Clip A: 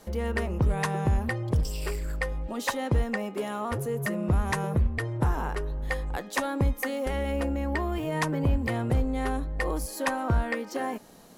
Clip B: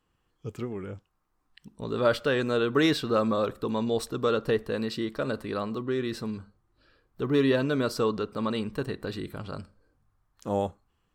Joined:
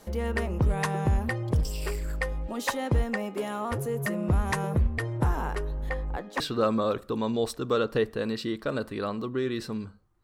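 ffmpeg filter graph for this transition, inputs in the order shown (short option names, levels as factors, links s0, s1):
-filter_complex "[0:a]asettb=1/sr,asplit=3[s0][s1][s2];[s0]atrim=end=5.894[s3];[s1]atrim=start=5.89:end=6.4,asetpts=PTS-STARTPTS,afade=t=in:d=0.004:c=qsin,afade=t=out:st=0.506:d=0.004:c=qsin,lowpass=f=1500:p=1[s4];[s2]atrim=start=6.396[s5];[s3][s4]acrossfade=d=0.004:c1=hsin:c2=qsin[s6];[s6][s5]acrossfade=d=0.004:c1=qsin:c2=hsin,apad=whole_dur=10.23,atrim=end=10.23,atrim=end=6.402[s7];[1:a]atrim=start=2.928:end=6.76[s8];[s7][s8]acrossfade=d=0.004:c1=hsin:c2=hsin"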